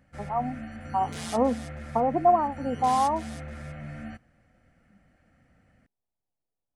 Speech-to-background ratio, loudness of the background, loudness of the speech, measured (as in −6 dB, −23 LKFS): 12.0 dB, −39.0 LKFS, −27.0 LKFS